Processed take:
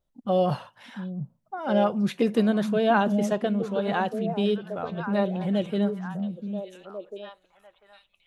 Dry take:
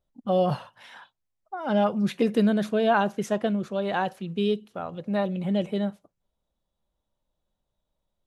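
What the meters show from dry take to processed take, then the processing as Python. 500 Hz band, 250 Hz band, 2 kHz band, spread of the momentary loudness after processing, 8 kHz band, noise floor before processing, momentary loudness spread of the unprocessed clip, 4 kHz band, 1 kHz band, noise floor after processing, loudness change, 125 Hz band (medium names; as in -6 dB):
+0.5 dB, +1.0 dB, +0.5 dB, 16 LU, no reading, -82 dBFS, 9 LU, 0.0 dB, +0.5 dB, -71 dBFS, 0.0 dB, +1.5 dB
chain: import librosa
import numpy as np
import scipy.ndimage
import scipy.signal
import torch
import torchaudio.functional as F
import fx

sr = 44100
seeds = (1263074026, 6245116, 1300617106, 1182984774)

y = fx.echo_stepped(x, sr, ms=696, hz=180.0, octaves=1.4, feedback_pct=70, wet_db=-4.0)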